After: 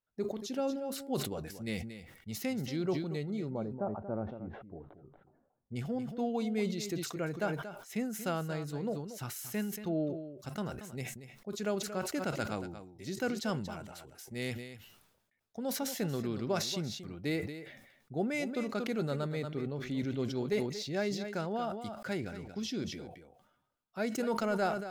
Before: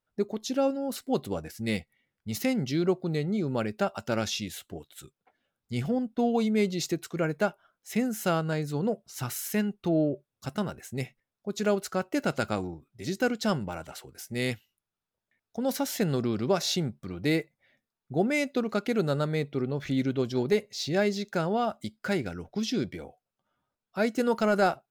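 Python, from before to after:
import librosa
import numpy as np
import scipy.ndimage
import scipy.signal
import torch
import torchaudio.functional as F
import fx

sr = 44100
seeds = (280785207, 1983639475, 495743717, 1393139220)

y = fx.lowpass(x, sr, hz=1000.0, slope=24, at=(3.49, 5.75), fade=0.02)
y = y + 10.0 ** (-12.0 / 20.0) * np.pad(y, (int(232 * sr / 1000.0), 0))[:len(y)]
y = fx.sustainer(y, sr, db_per_s=60.0)
y = F.gain(torch.from_numpy(y), -8.0).numpy()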